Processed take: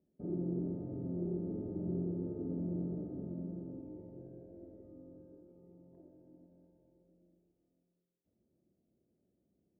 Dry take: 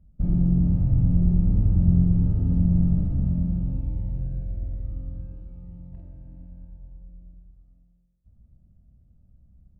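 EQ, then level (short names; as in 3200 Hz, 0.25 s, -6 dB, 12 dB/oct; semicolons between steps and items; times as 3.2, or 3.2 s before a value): ladder band-pass 410 Hz, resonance 65%; +7.5 dB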